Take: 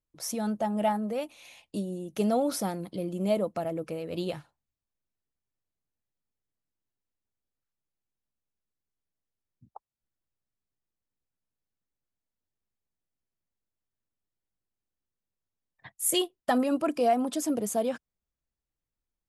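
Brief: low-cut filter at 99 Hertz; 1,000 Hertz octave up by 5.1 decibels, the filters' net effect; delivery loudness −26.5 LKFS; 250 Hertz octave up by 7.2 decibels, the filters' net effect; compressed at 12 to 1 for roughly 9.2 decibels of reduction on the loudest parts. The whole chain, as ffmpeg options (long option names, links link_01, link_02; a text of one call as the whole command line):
ffmpeg -i in.wav -af "highpass=99,equalizer=frequency=250:width_type=o:gain=8.5,equalizer=frequency=1000:width_type=o:gain=7,acompressor=threshold=-24dB:ratio=12,volume=3.5dB" out.wav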